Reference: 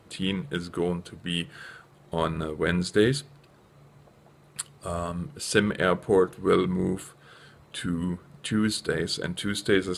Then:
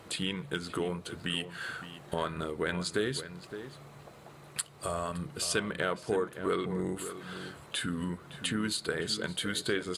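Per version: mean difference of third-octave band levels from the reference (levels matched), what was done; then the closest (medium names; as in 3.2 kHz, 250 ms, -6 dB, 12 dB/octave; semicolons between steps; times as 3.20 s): 7.0 dB: bass shelf 340 Hz -7.5 dB; compression 2.5:1, threshold -41 dBFS, peak gain reduction 15.5 dB; echo from a far wall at 97 m, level -11 dB; trim +7 dB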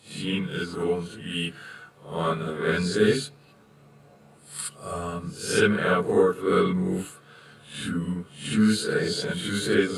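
4.5 dB: reverse spectral sustain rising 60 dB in 0.40 s; high-pass 75 Hz; gated-style reverb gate 90 ms rising, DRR -6.5 dB; trim -7.5 dB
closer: second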